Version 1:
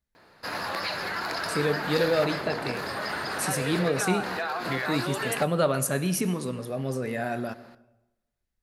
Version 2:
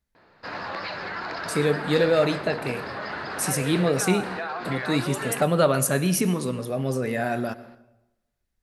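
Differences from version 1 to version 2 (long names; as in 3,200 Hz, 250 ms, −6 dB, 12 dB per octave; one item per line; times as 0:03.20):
speech +4.0 dB
background: add high-frequency loss of the air 160 metres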